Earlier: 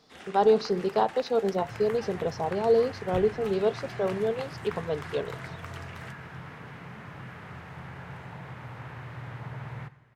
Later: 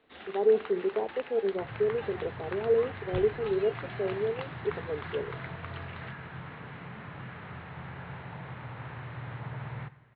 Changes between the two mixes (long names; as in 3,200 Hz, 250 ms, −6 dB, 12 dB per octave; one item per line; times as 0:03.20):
speech: add resonant band-pass 380 Hz, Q 2.6
master: add Butterworth low-pass 4,100 Hz 72 dB per octave